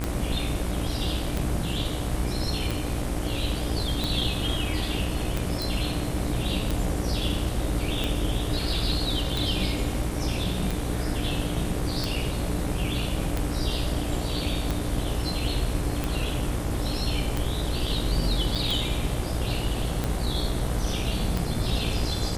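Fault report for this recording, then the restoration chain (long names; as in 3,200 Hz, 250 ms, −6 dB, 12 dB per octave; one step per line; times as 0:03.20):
mains buzz 60 Hz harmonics 39 −31 dBFS
scratch tick 45 rpm −13 dBFS
0:05.62: click
0:18.55–0:18.56: drop-out 6.4 ms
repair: click removal
hum removal 60 Hz, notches 39
repair the gap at 0:18.55, 6.4 ms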